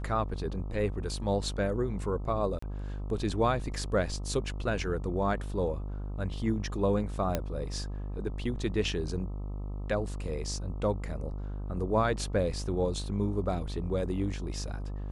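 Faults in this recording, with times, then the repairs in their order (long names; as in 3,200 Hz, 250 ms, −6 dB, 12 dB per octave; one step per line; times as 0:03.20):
mains buzz 50 Hz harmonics 26 −36 dBFS
0:02.59–0:02.62: drop-out 34 ms
0:07.35: click −14 dBFS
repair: click removal
hum removal 50 Hz, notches 26
repair the gap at 0:02.59, 34 ms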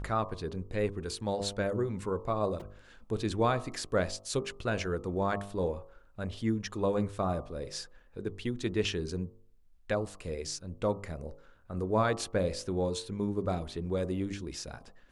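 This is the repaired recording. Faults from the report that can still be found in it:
none of them is left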